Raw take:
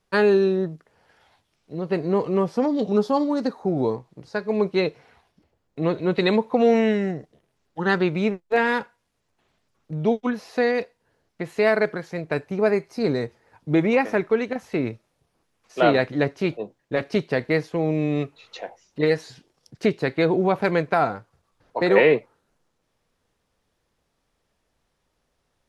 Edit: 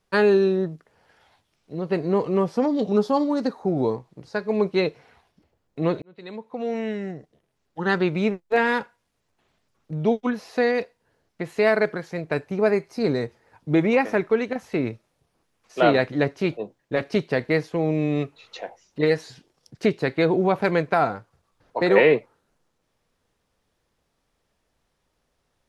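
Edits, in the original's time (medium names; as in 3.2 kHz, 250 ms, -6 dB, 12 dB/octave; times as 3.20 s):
6.02–8.18 s: fade in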